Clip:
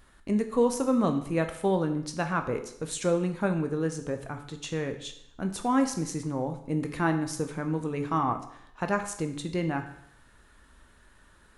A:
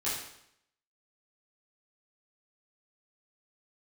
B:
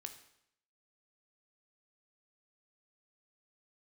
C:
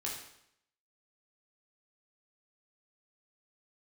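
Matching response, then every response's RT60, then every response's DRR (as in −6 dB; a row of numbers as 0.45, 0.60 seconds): B; 0.75, 0.75, 0.75 seconds; −10.5, 6.0, −4.0 decibels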